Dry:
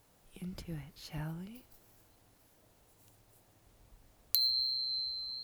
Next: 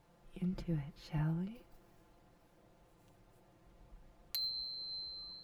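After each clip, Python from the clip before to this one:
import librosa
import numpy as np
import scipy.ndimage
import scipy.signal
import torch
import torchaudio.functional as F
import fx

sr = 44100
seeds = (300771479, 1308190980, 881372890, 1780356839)

y = fx.lowpass(x, sr, hz=1600.0, slope=6)
y = y + 0.72 * np.pad(y, (int(5.8 * sr / 1000.0), 0))[:len(y)]
y = y * 10.0 ** (1.0 / 20.0)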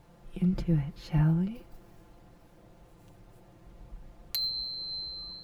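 y = fx.low_shelf(x, sr, hz=280.0, db=5.5)
y = y * 10.0 ** (7.0 / 20.0)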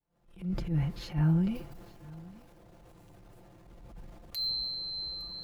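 y = fx.fade_in_head(x, sr, length_s=0.82)
y = fx.transient(y, sr, attack_db=-10, sustain_db=6)
y = y + 10.0 ** (-22.0 / 20.0) * np.pad(y, (int(862 * sr / 1000.0), 0))[:len(y)]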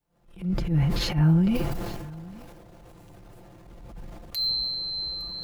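y = fx.sustainer(x, sr, db_per_s=27.0)
y = y * 10.0 ** (6.0 / 20.0)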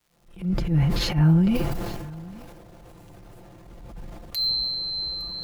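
y = fx.dmg_crackle(x, sr, seeds[0], per_s=280.0, level_db=-55.0)
y = y * 10.0 ** (2.0 / 20.0)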